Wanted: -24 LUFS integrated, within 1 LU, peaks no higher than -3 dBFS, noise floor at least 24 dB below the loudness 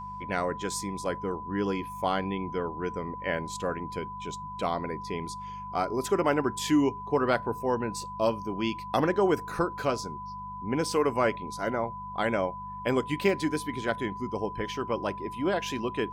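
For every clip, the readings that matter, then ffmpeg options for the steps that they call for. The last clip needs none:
hum 50 Hz; harmonics up to 200 Hz; hum level -44 dBFS; steady tone 1000 Hz; tone level -37 dBFS; loudness -30.0 LUFS; peak -12.5 dBFS; loudness target -24.0 LUFS
-> -af "bandreject=f=50:t=h:w=4,bandreject=f=100:t=h:w=4,bandreject=f=150:t=h:w=4,bandreject=f=200:t=h:w=4"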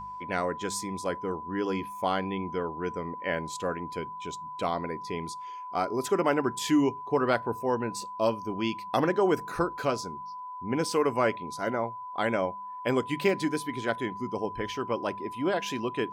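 hum none; steady tone 1000 Hz; tone level -37 dBFS
-> -af "bandreject=f=1k:w=30"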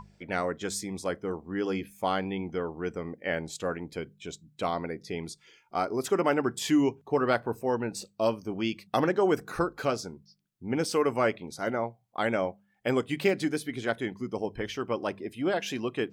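steady tone none; loudness -30.5 LUFS; peak -12.5 dBFS; loudness target -24.0 LUFS
-> -af "volume=6.5dB"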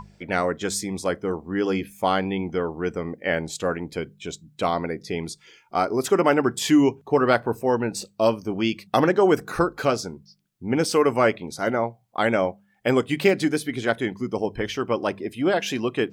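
loudness -24.0 LUFS; peak -6.0 dBFS; noise floor -61 dBFS

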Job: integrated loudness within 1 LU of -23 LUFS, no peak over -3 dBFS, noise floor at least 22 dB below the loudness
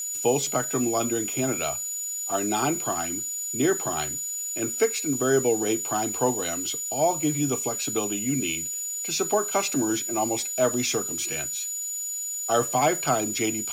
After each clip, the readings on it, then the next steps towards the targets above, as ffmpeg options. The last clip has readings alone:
steady tone 6900 Hz; tone level -29 dBFS; noise floor -32 dBFS; noise floor target -47 dBFS; loudness -25.0 LUFS; peak -10.0 dBFS; loudness target -23.0 LUFS
-> -af "bandreject=f=6.9k:w=30"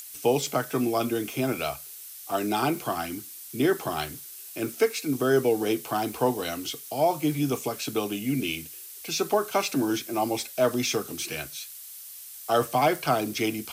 steady tone none; noise floor -43 dBFS; noise floor target -49 dBFS
-> -af "afftdn=nr=6:nf=-43"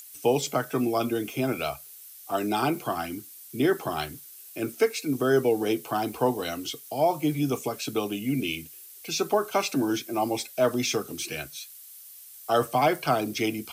noise floor -47 dBFS; noise floor target -50 dBFS
-> -af "afftdn=nr=6:nf=-47"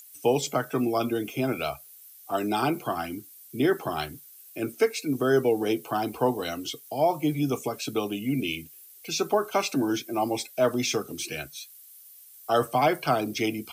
noise floor -50 dBFS; loudness -27.5 LUFS; peak -11.0 dBFS; loudness target -23.0 LUFS
-> -af "volume=4.5dB"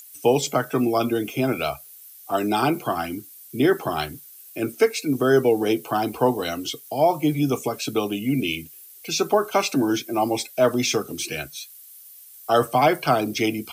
loudness -23.0 LUFS; peak -6.5 dBFS; noise floor -46 dBFS

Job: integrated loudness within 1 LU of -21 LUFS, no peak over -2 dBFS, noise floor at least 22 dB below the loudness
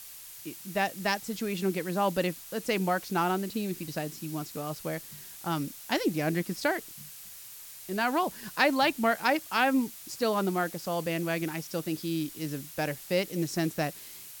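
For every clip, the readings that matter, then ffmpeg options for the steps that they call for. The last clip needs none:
noise floor -46 dBFS; noise floor target -52 dBFS; loudness -30.0 LUFS; peak -10.0 dBFS; loudness target -21.0 LUFS
-> -af "afftdn=nr=6:nf=-46"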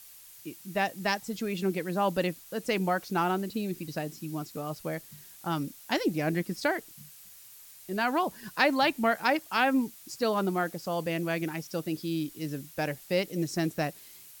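noise floor -51 dBFS; noise floor target -53 dBFS
-> -af "afftdn=nr=6:nf=-51"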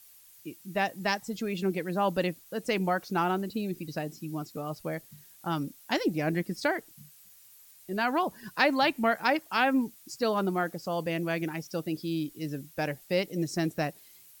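noise floor -56 dBFS; loudness -30.5 LUFS; peak -10.5 dBFS; loudness target -21.0 LUFS
-> -af "volume=9.5dB,alimiter=limit=-2dB:level=0:latency=1"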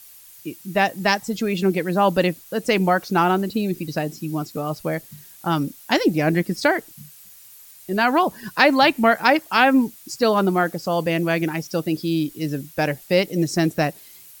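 loudness -21.0 LUFS; peak -2.0 dBFS; noise floor -46 dBFS

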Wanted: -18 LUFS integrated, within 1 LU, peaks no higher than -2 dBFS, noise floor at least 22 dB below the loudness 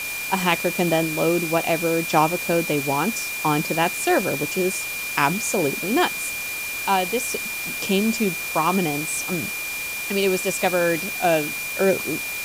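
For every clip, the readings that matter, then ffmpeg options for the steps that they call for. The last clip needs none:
steady tone 2400 Hz; tone level -28 dBFS; noise floor -29 dBFS; noise floor target -44 dBFS; loudness -22.0 LUFS; peak -3.5 dBFS; loudness target -18.0 LUFS
-> -af "bandreject=f=2.4k:w=30"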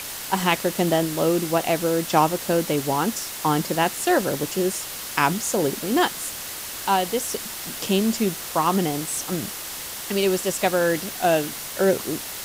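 steady tone none; noise floor -34 dBFS; noise floor target -45 dBFS
-> -af "afftdn=nr=11:nf=-34"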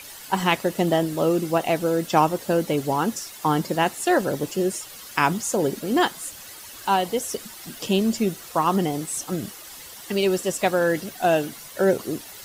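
noise floor -41 dBFS; noise floor target -46 dBFS
-> -af "afftdn=nr=6:nf=-41"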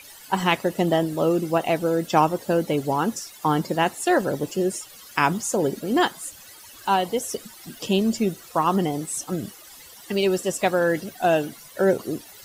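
noise floor -46 dBFS; loudness -23.5 LUFS; peak -4.0 dBFS; loudness target -18.0 LUFS
-> -af "volume=5.5dB,alimiter=limit=-2dB:level=0:latency=1"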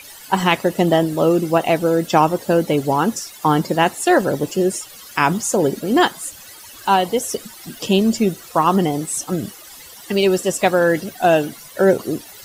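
loudness -18.0 LUFS; peak -2.0 dBFS; noise floor -40 dBFS

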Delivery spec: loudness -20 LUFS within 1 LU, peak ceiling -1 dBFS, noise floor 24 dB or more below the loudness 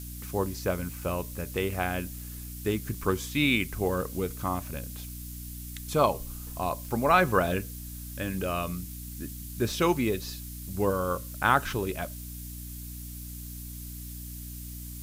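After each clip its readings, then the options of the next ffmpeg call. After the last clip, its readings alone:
hum 60 Hz; harmonics up to 300 Hz; hum level -38 dBFS; noise floor -40 dBFS; noise floor target -55 dBFS; loudness -30.5 LUFS; peak -7.5 dBFS; loudness target -20.0 LUFS
-> -af "bandreject=f=60:t=h:w=4,bandreject=f=120:t=h:w=4,bandreject=f=180:t=h:w=4,bandreject=f=240:t=h:w=4,bandreject=f=300:t=h:w=4"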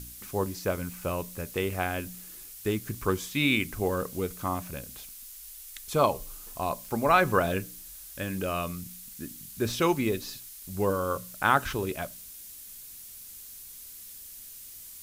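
hum none; noise floor -46 dBFS; noise floor target -54 dBFS
-> -af "afftdn=nr=8:nf=-46"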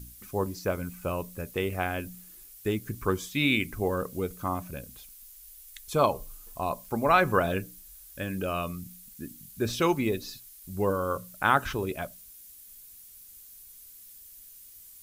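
noise floor -50 dBFS; noise floor target -54 dBFS
-> -af "afftdn=nr=6:nf=-50"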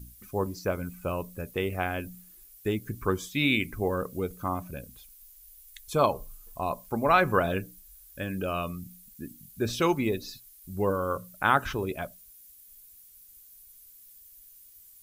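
noise floor -54 dBFS; loudness -29.5 LUFS; peak -7.5 dBFS; loudness target -20.0 LUFS
-> -af "volume=9.5dB,alimiter=limit=-1dB:level=0:latency=1"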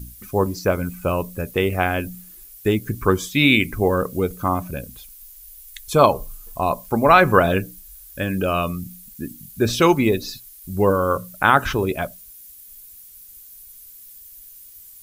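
loudness -20.0 LUFS; peak -1.0 dBFS; noise floor -44 dBFS

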